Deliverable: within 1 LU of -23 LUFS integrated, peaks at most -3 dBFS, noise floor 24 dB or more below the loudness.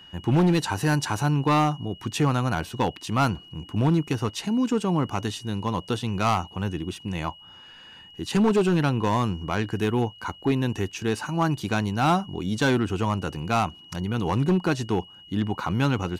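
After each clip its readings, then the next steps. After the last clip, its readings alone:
clipped 1.6%; flat tops at -15.5 dBFS; steady tone 2900 Hz; tone level -46 dBFS; loudness -25.5 LUFS; peak -15.5 dBFS; loudness target -23.0 LUFS
-> clip repair -15.5 dBFS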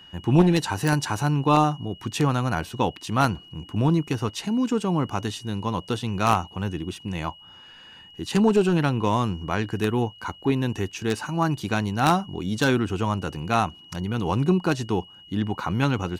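clipped 0.0%; steady tone 2900 Hz; tone level -46 dBFS
-> notch 2900 Hz, Q 30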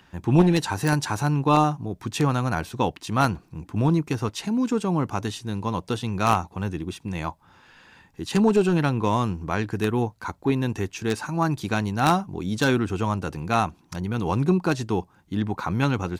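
steady tone none; loudness -24.5 LUFS; peak -6.0 dBFS; loudness target -23.0 LUFS
-> gain +1.5 dB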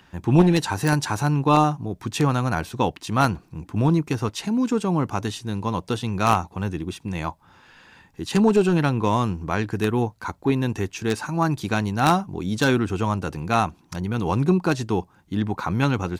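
loudness -23.0 LUFS; peak -4.5 dBFS; noise floor -56 dBFS

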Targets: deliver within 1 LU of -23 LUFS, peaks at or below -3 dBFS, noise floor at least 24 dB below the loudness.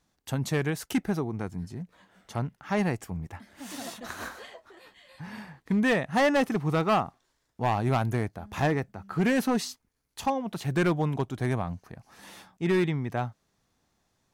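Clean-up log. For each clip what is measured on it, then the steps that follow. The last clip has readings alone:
clipped 1.4%; flat tops at -19.0 dBFS; loudness -29.0 LUFS; peak -19.0 dBFS; loudness target -23.0 LUFS
-> clip repair -19 dBFS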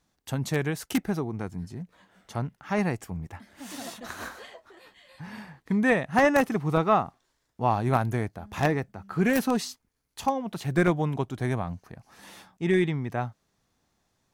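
clipped 0.0%; loudness -27.5 LUFS; peak -10.0 dBFS; loudness target -23.0 LUFS
-> gain +4.5 dB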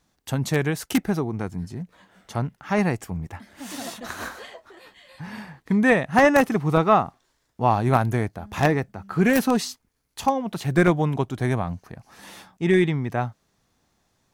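loudness -23.0 LUFS; peak -5.5 dBFS; noise floor -71 dBFS

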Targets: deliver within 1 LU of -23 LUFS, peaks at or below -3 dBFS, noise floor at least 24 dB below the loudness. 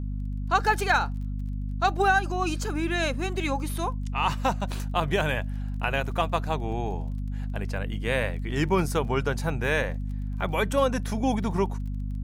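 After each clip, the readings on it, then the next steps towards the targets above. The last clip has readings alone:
ticks 24/s; hum 50 Hz; harmonics up to 250 Hz; hum level -28 dBFS; loudness -27.5 LUFS; peak -9.0 dBFS; loudness target -23.0 LUFS
-> de-click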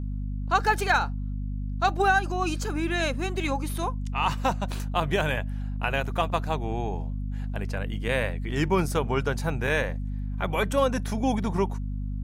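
ticks 0.082/s; hum 50 Hz; harmonics up to 250 Hz; hum level -28 dBFS
-> de-hum 50 Hz, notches 5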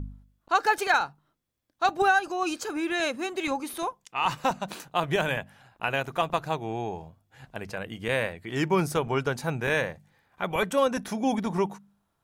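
hum none; loudness -28.0 LUFS; peak -10.0 dBFS; loudness target -23.0 LUFS
-> gain +5 dB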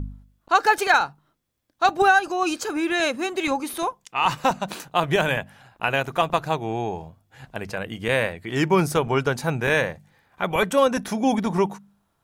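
loudness -23.0 LUFS; peak -5.0 dBFS; noise floor -70 dBFS

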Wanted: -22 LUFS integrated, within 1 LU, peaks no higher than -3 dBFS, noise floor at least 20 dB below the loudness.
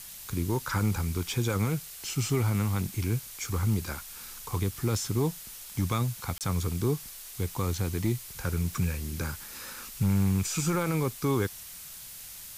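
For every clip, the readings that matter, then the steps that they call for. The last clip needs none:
dropouts 1; longest dropout 28 ms; noise floor -44 dBFS; noise floor target -50 dBFS; loudness -30.0 LUFS; peak -16.5 dBFS; loudness target -22.0 LUFS
-> interpolate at 6.38, 28 ms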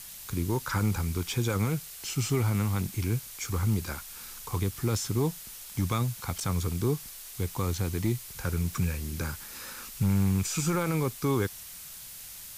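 dropouts 0; noise floor -44 dBFS; noise floor target -50 dBFS
-> denoiser 6 dB, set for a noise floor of -44 dBFS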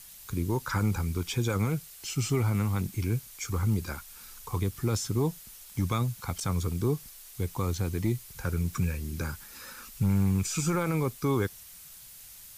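noise floor -49 dBFS; noise floor target -51 dBFS
-> denoiser 6 dB, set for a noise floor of -49 dBFS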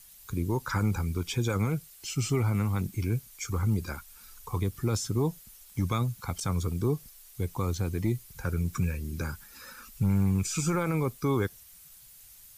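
noise floor -53 dBFS; loudness -30.5 LUFS; peak -17.0 dBFS; loudness target -22.0 LUFS
-> gain +8.5 dB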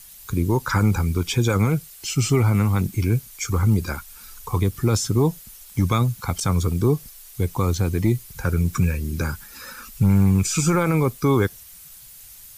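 loudness -22.0 LUFS; peak -8.5 dBFS; noise floor -44 dBFS

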